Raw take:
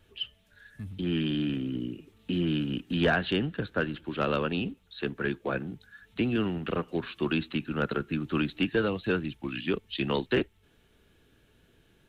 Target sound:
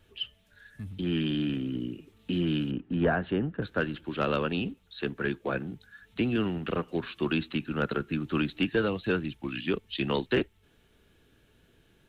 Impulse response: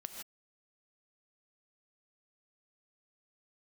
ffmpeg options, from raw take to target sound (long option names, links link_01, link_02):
-filter_complex "[0:a]asettb=1/sr,asplit=3[link_01][link_02][link_03];[link_01]atrim=end=2.714[link_04];[link_02]atrim=start=2.71:end=3.62,asetpts=PTS-STARTPTS,afade=type=in:duration=0.004:curve=qsin,afade=type=out:start_time=0.906:duration=0.004:curve=qsin,lowpass=1400[link_05];[link_03]atrim=start=3.616[link_06];[link_04][link_05]acrossfade=duration=0.004:curve1=hsin:curve2=qsin[link_07];[link_07][link_06]acrossfade=duration=0.004:curve1=qsin:curve2=hsin"